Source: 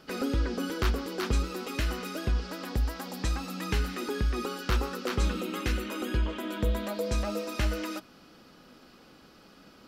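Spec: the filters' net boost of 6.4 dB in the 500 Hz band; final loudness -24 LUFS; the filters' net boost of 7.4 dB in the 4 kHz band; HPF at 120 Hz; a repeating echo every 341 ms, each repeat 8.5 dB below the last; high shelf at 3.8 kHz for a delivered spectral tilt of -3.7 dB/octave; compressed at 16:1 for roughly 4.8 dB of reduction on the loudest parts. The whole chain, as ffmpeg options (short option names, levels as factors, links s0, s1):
-af "highpass=120,equalizer=f=500:t=o:g=7.5,highshelf=f=3800:g=3.5,equalizer=f=4000:t=o:g=7,acompressor=threshold=0.0398:ratio=16,aecho=1:1:341|682|1023|1364:0.376|0.143|0.0543|0.0206,volume=2.66"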